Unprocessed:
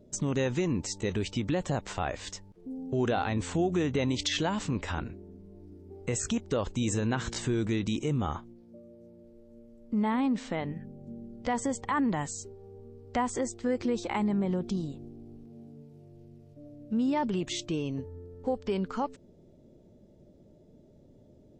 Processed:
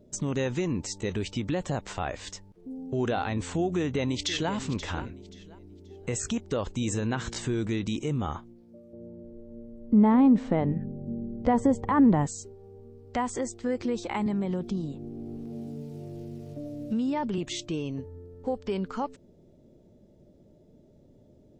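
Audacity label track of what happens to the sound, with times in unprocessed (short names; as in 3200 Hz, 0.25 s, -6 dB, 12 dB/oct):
3.750000	4.520000	echo throw 0.53 s, feedback 25%, level -12.5 dB
8.930000	12.270000	tilt shelf lows +9.5 dB, about 1500 Hz
14.260000	17.380000	three-band squash depth 70%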